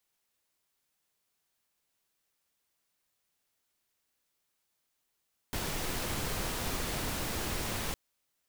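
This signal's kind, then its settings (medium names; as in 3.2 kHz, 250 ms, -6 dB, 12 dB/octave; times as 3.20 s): noise pink, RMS -34.5 dBFS 2.41 s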